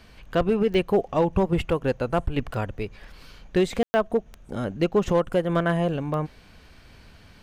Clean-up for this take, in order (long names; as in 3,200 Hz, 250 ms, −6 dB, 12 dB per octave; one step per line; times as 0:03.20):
click removal
ambience match 0:03.83–0:03.94